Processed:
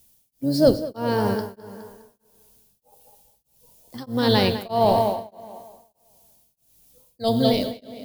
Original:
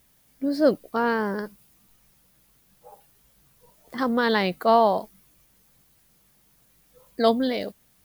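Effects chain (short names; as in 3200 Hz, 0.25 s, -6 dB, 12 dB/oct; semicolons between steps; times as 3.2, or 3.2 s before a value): octaver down 1 oct, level -6 dB; tone controls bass +1 dB, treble +9 dB; gate -42 dBFS, range -6 dB; band shelf 1500 Hz -8 dB 1.2 oct; tape echo 0.206 s, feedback 42%, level -6 dB, low-pass 4600 Hz; non-linear reverb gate 0.43 s falling, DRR 10.5 dB; beating tremolo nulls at 1.6 Hz; gain +3 dB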